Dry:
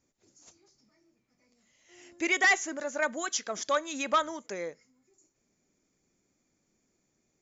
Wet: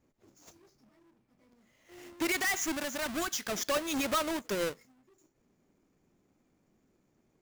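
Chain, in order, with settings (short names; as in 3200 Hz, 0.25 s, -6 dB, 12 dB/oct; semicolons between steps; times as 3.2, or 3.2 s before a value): half-waves squared off; 2.32–3.51 bell 490 Hz -9.5 dB 0.61 oct; limiter -25.5 dBFS, peak gain reduction 11 dB; mismatched tape noise reduction decoder only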